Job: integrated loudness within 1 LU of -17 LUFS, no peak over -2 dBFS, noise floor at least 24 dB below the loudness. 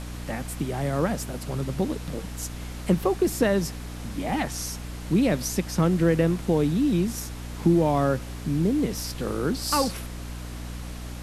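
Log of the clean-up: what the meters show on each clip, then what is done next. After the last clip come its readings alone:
hum 60 Hz; highest harmonic 300 Hz; hum level -34 dBFS; noise floor -36 dBFS; noise floor target -50 dBFS; loudness -26.0 LUFS; peak level -9.0 dBFS; loudness target -17.0 LUFS
-> hum notches 60/120/180/240/300 Hz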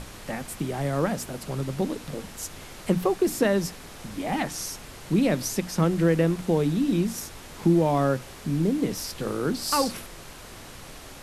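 hum not found; noise floor -44 dBFS; noise floor target -50 dBFS
-> noise print and reduce 6 dB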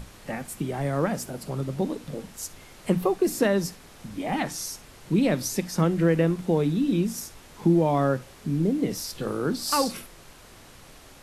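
noise floor -49 dBFS; noise floor target -50 dBFS
-> noise print and reduce 6 dB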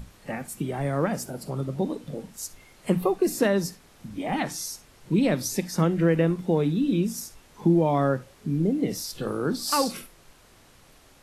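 noise floor -55 dBFS; loudness -26.0 LUFS; peak level -9.5 dBFS; loudness target -17.0 LUFS
-> trim +9 dB; peak limiter -2 dBFS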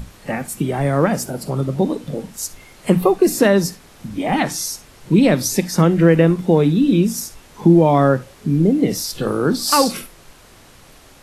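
loudness -17.5 LUFS; peak level -2.0 dBFS; noise floor -46 dBFS

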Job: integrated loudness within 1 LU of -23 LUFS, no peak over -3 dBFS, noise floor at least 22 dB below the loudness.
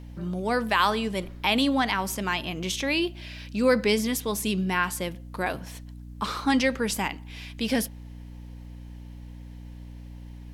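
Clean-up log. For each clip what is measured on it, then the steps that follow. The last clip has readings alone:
hum 60 Hz; highest harmonic 300 Hz; hum level -39 dBFS; loudness -26.5 LUFS; peak level -8.5 dBFS; loudness target -23.0 LUFS
-> hum notches 60/120/180/240/300 Hz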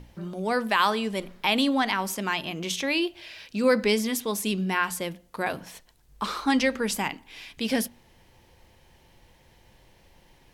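hum not found; loudness -26.5 LUFS; peak level -9.0 dBFS; loudness target -23.0 LUFS
-> trim +3.5 dB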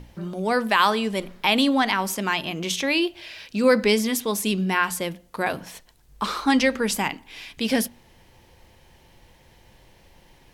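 loudness -23.0 LUFS; peak level -5.5 dBFS; noise floor -55 dBFS

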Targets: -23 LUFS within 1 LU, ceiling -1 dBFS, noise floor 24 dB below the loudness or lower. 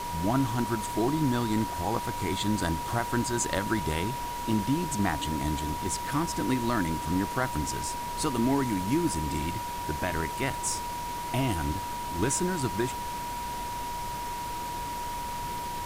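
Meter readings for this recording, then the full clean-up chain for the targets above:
steady tone 960 Hz; tone level -33 dBFS; noise floor -35 dBFS; noise floor target -54 dBFS; loudness -30.0 LUFS; peak level -13.5 dBFS; loudness target -23.0 LUFS
-> band-stop 960 Hz, Q 30; noise print and reduce 19 dB; trim +7 dB

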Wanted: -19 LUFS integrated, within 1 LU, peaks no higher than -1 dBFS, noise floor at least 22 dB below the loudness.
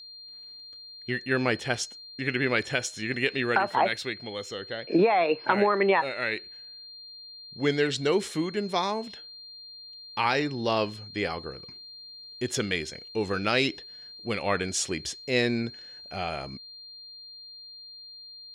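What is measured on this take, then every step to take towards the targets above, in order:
steady tone 4.2 kHz; tone level -43 dBFS; loudness -27.5 LUFS; peak level -10.5 dBFS; loudness target -19.0 LUFS
-> band-stop 4.2 kHz, Q 30; trim +8.5 dB

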